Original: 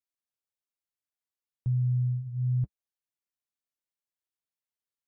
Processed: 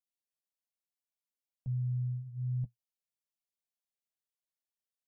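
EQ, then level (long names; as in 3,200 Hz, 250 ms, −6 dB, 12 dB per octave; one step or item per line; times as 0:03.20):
phaser with its sweep stopped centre 350 Hz, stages 6
dynamic equaliser 120 Hz, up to +4 dB, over −43 dBFS, Q 5.6
−3.5 dB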